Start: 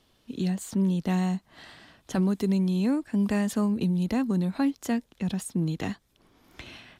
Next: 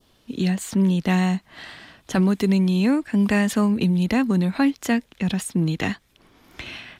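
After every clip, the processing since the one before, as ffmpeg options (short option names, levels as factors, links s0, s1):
-af "adynamicequalizer=threshold=0.00282:dfrequency=2200:dqfactor=0.93:tfrequency=2200:tqfactor=0.93:attack=5:release=100:ratio=0.375:range=3.5:mode=boostabove:tftype=bell,volume=1.88"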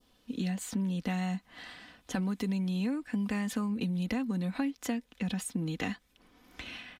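-af "aecho=1:1:4:0.48,acompressor=threshold=0.0891:ratio=6,volume=0.398"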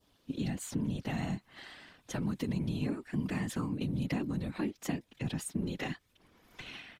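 -af "afftfilt=real='hypot(re,im)*cos(2*PI*random(0))':imag='hypot(re,im)*sin(2*PI*random(1))':win_size=512:overlap=0.75,volume=1.5"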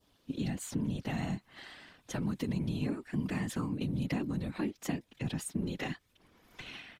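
-af anull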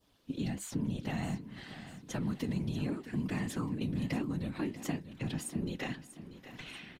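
-af "flanger=delay=5.6:depth=6.7:regen=-74:speed=1.4:shape=triangular,aecho=1:1:638|1276|1914|2552:0.211|0.0972|0.0447|0.0206,volume=1.5"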